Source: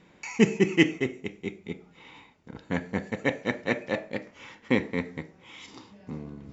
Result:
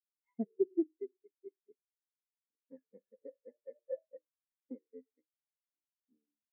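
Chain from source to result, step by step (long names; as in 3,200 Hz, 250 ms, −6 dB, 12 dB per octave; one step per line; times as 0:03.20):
phase distortion by the signal itself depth 0.47 ms
high-pass filter 330 Hz 12 dB per octave
downward compressor 4 to 1, threshold −30 dBFS, peak gain reduction 12 dB
linear-phase brick-wall band-stop 2,200–4,400 Hz
far-end echo of a speakerphone 100 ms, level −18 dB
every bin expanded away from the loudest bin 4 to 1
level −3.5 dB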